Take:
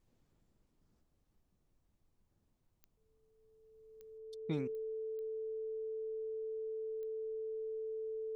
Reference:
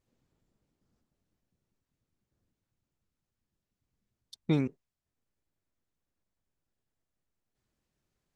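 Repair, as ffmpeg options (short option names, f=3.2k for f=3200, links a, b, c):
-af "adeclick=t=4,bandreject=f=440:w=30,agate=range=-21dB:threshold=-69dB,asetnsamples=n=441:p=0,asendcmd='4.18 volume volume 10.5dB',volume=0dB"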